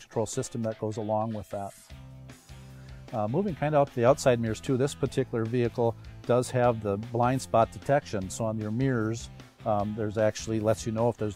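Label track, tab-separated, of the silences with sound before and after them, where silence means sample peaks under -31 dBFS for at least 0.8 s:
1.680000	3.130000	silence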